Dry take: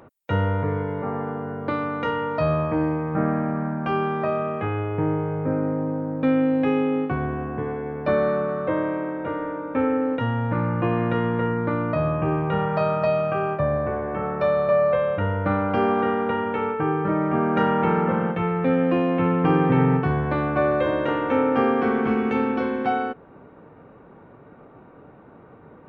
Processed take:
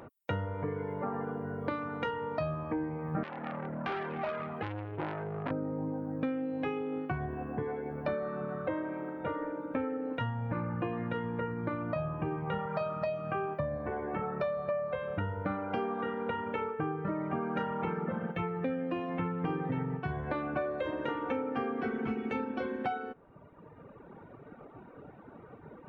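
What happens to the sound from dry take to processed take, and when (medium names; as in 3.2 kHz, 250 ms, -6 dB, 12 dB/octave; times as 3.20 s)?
3.23–5.51 s: transformer saturation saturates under 1.3 kHz
whole clip: band-stop 1.1 kHz, Q 29; reverb removal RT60 1.5 s; compression, threshold -31 dBFS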